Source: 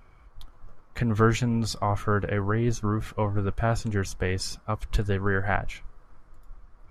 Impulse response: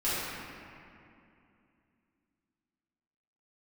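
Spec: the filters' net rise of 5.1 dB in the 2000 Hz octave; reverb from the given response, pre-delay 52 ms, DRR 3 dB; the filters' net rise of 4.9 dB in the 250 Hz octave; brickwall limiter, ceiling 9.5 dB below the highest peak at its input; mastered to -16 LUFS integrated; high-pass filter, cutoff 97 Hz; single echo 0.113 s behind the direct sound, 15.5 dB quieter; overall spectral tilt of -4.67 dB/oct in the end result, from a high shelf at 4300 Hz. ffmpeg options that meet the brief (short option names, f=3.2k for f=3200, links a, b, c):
-filter_complex "[0:a]highpass=97,equalizer=f=250:t=o:g=6,equalizer=f=2k:t=o:g=8,highshelf=f=4.3k:g=-6.5,alimiter=limit=-14dB:level=0:latency=1,aecho=1:1:113:0.168,asplit=2[a][b];[1:a]atrim=start_sample=2205,adelay=52[c];[b][c]afir=irnorm=-1:irlink=0,volume=-13.5dB[d];[a][d]amix=inputs=2:normalize=0,volume=8.5dB"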